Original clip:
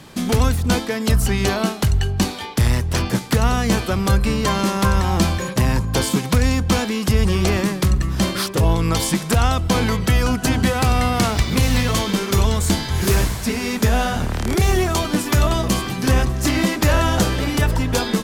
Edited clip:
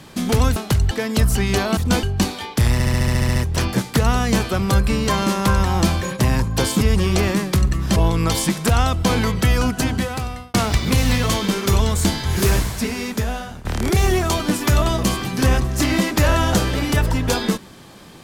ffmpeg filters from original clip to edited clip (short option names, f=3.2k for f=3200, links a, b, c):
-filter_complex "[0:a]asplit=18[a][b][c][d][e][f][g][h][i][j][k][l][m][n][o][p][q][r];[a]atrim=end=0.562[s];[b]atrim=start=1.678:end=2.032[t];[c]atrim=start=0.818:end=1.682[u];[d]atrim=start=0.558:end=0.822[v];[e]atrim=start=2.028:end=2.802[w];[f]atrim=start=2.728:end=2.802[x];[g]atrim=start=2.728:end=2.802[y];[h]atrim=start=2.728:end=2.802[z];[i]atrim=start=2.728:end=2.802[aa];[j]atrim=start=2.728:end=2.802[ab];[k]atrim=start=2.728:end=2.802[ac];[l]atrim=start=2.728:end=2.802[ad];[m]atrim=start=2.728:end=2.802[ae];[n]atrim=start=2.728:end=6.182[af];[o]atrim=start=7.098:end=8.252[ag];[p]atrim=start=8.608:end=11.19,asetpts=PTS-STARTPTS,afade=t=out:st=1.712:d=0.87[ah];[q]atrim=start=11.19:end=14.3,asetpts=PTS-STARTPTS,afade=t=in:d=0.004:c=hsin,afade=t=out:st=2.18:d=0.93:silence=0.125893[ai];[r]atrim=start=14.3,asetpts=PTS-STARTPTS,afade=t=in:d=0.004:c=hsin:silence=0.125893[aj];[s][t]acrossfade=d=0.004:c1=hsin:c2=hsin[ak];[ak][u]acrossfade=d=0.004:c1=hsin:c2=hsin[al];[al][v]acrossfade=d=0.004:c1=hsin:c2=hsin[am];[am][w]acrossfade=d=0.004:c1=hsin:c2=hsin[an];[an][x]acrossfade=d=0.004:c1=hsin:c2=hsin[ao];[ao][y]acrossfade=d=0.004:c1=hsin:c2=hsin[ap];[ap][z]acrossfade=d=0.004:c1=hsin:c2=hsin[aq];[aq][aa]acrossfade=d=0.004:c1=hsin:c2=hsin[ar];[ar][ab]acrossfade=d=0.004:c1=hsin:c2=hsin[as];[as][ac]acrossfade=d=0.004:c1=hsin:c2=hsin[at];[at][ad]acrossfade=d=0.004:c1=hsin:c2=hsin[au];[au][ae]acrossfade=d=0.004:c1=hsin:c2=hsin[av];[av][af]acrossfade=d=0.004:c1=hsin:c2=hsin[aw];[aw][ag]acrossfade=d=0.004:c1=hsin:c2=hsin[ax];[ah][ai][aj]concat=n=3:v=0:a=1[ay];[ax][ay]acrossfade=d=0.004:c1=hsin:c2=hsin"